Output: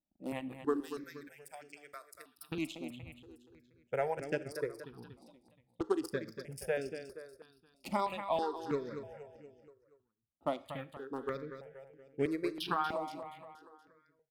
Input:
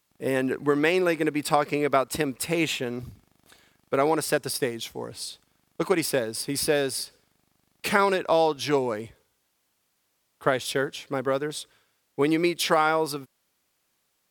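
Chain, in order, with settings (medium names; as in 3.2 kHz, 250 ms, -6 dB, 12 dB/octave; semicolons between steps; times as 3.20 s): local Wiener filter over 41 samples; 0.80–2.52 s: pre-emphasis filter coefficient 0.97; reverb removal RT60 1.6 s; treble shelf 7.3 kHz -6 dB; feedback delay 237 ms, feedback 49%, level -10 dB; Schroeder reverb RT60 0.49 s, combs from 28 ms, DRR 16.5 dB; stepped phaser 3.1 Hz 440–3900 Hz; trim -6.5 dB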